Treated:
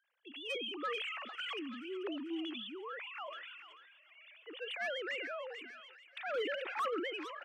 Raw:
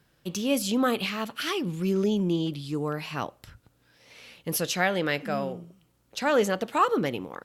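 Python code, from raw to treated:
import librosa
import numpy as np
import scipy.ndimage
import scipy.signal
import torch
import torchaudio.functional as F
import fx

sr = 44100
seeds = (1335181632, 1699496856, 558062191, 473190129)

y = fx.sine_speech(x, sr)
y = np.diff(y, prepend=0.0)
y = 10.0 ** (-38.5 / 20.0) * np.tanh(y / 10.0 ** (-38.5 / 20.0))
y = scipy.signal.sosfilt(scipy.signal.butter(12, 210.0, 'highpass', fs=sr, output='sos'), y)
y = fx.high_shelf(y, sr, hz=2800.0, db=-7.0)
y = fx.echo_wet_highpass(y, sr, ms=439, feedback_pct=53, hz=1800.0, wet_db=-14.0)
y = np.clip(y, -10.0 ** (-38.5 / 20.0), 10.0 ** (-38.5 / 20.0))
y = fx.sustainer(y, sr, db_per_s=28.0)
y = y * 10.0 ** (8.5 / 20.0)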